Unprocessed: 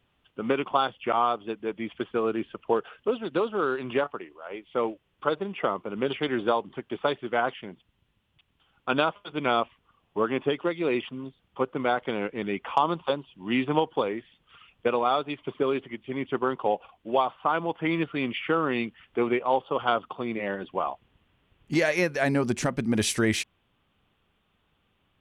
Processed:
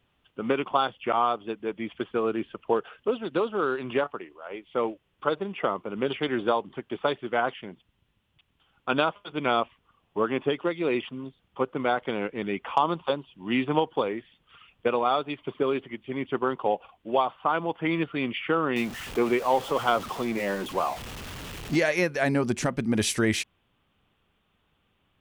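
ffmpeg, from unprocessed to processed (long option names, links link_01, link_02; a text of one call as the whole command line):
ffmpeg -i in.wav -filter_complex "[0:a]asettb=1/sr,asplit=3[link_01][link_02][link_03];[link_01]atrim=end=18.764[link_04];[link_02]atrim=start=18.76:end=21.76,asetpts=PTS-STARTPTS,afade=type=in:duration=0.004:curve=qsin,afade=type=out:start_time=2.996:duration=0.004:curve=qsin,aeval=exprs='val(0)+0.5*0.0224*sgn(val(0))':channel_layout=same[link_05];[link_03]atrim=start=21.756[link_06];[link_04][link_05]acrossfade=duration=0.004:curve1=hsin:curve2=qsin[link_07];[link_07][link_06]acrossfade=duration=0.004:curve1=qsin:curve2=hsin" out.wav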